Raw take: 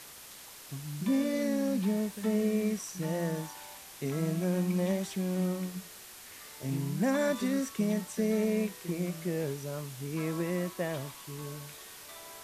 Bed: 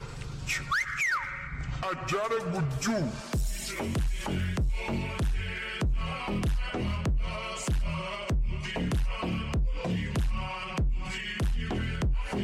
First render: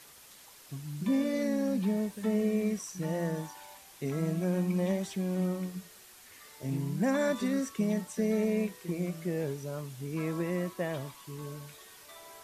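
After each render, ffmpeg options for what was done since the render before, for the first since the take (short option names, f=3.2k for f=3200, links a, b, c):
-af "afftdn=nr=6:nf=-49"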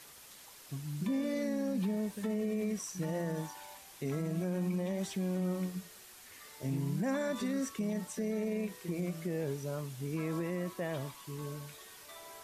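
-af "alimiter=level_in=2.5dB:limit=-24dB:level=0:latency=1:release=63,volume=-2.5dB"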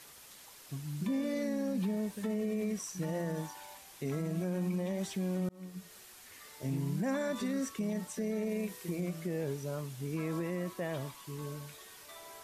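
-filter_complex "[0:a]asettb=1/sr,asplit=3[a][b][c];[a]atrim=end=8.494[d];[b]atrim=start=8.49:end=8.96,asetpts=PTS-STARTPTS,afade=t=in:d=0.004:c=qsin,afade=t=out:st=0.466:d=0.004:c=qsin,highshelf=f=5.7k:g=5.5[e];[c]atrim=start=8.956[f];[d][e]acrossfade=d=0.004:c1=hsin:c2=qsin[g];[g][f]acrossfade=d=0.004:c1=qsin:c2=hsin,asplit=2[h][i];[h]atrim=end=5.49,asetpts=PTS-STARTPTS,afade=t=out:st=5.486:d=0.004:c=hsin[j];[i]atrim=start=5.49,asetpts=PTS-STARTPTS,afade=t=in:d=0.47[k];[j][k]concat=n=2:v=0:a=1"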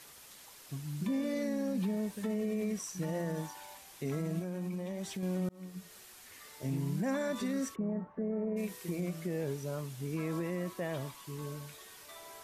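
-filter_complex "[0:a]asettb=1/sr,asplit=3[a][b][c];[a]atrim=end=4.394[d];[b]atrim=start=4.39:end=5.23,asetpts=PTS-STARTPTS,afade=t=in:d=0.004:c=qsin,afade=t=out:st=0.836:d=0.004:c=qsin,acompressor=threshold=-37dB:ratio=2:attack=3.2:release=140:knee=1:detection=peak[e];[c]atrim=start=5.226[f];[d][e]acrossfade=d=0.004:c1=hsin:c2=qsin[g];[g][f]acrossfade=d=0.004:c1=qsin:c2=hsin,asplit=3[h][i][j];[h]afade=t=out:st=7.74:d=0.02[k];[i]lowpass=f=1.4k:w=0.5412,lowpass=f=1.4k:w=1.3066,afade=t=in:st=7.74:d=0.02,afade=t=out:st=8.56:d=0.02[l];[j]afade=t=in:st=8.56:d=0.02[m];[k][l][m]amix=inputs=3:normalize=0"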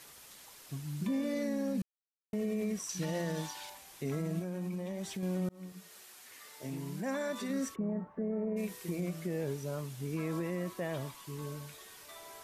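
-filter_complex "[0:a]asettb=1/sr,asplit=3[a][b][c];[a]atrim=end=2.894[d];[b]atrim=start=2.89:end=3.7,asetpts=PTS-STARTPTS,afade=t=in:d=0.004:c=qsin,afade=t=out:st=0.806:d=0.004:c=qsin,equalizer=f=3.9k:w=0.77:g=9.5[e];[c]atrim=start=3.696[f];[d][e]acrossfade=d=0.004:c1=hsin:c2=qsin[g];[g][f]acrossfade=d=0.004:c1=qsin:c2=hsin,asettb=1/sr,asplit=3[h][i][j];[h]atrim=end=5.724[k];[i]atrim=start=5.72:end=7.5,asetpts=PTS-STARTPTS,afade=t=in:d=0.004:c=qsin,afade=t=out:st=1.776:d=0.004:c=qsin,highpass=f=310:p=1[l];[j]atrim=start=7.496[m];[k][l]acrossfade=d=0.004:c1=hsin:c2=qsin[n];[n][m]acrossfade=d=0.004:c1=qsin:c2=hsin,asplit=3[o][p][q];[o]atrim=end=1.82,asetpts=PTS-STARTPTS,afade=t=out:st=1.816:d=0.004:c=hsin[r];[p]atrim=start=1.82:end=2.33,asetpts=PTS-STARTPTS,volume=0[s];[q]atrim=start=2.33,asetpts=PTS-STARTPTS,afade=t=in:d=0.004:c=hsin[t];[r][s][t]concat=n=3:v=0:a=1"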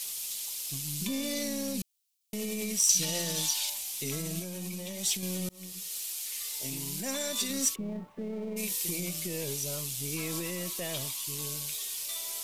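-af "aeval=exprs='if(lt(val(0),0),0.708*val(0),val(0))':c=same,aexciter=amount=7.6:drive=3.4:freq=2.4k"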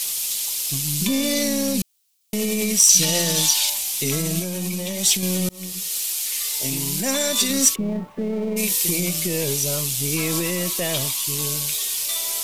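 -af "volume=11.5dB,alimiter=limit=-1dB:level=0:latency=1"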